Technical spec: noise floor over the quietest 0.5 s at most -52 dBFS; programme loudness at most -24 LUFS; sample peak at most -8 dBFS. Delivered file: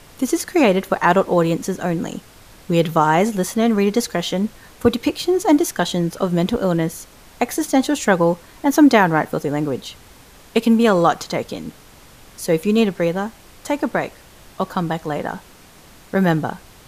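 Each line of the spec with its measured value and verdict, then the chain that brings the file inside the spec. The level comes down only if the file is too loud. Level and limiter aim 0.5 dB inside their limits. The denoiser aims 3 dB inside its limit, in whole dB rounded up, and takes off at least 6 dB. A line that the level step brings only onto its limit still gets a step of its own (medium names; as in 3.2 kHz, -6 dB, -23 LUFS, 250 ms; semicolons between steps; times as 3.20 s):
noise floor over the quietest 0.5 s -46 dBFS: fail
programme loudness -19.0 LUFS: fail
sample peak -2.0 dBFS: fail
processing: noise reduction 6 dB, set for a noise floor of -46 dBFS; trim -5.5 dB; peak limiter -8.5 dBFS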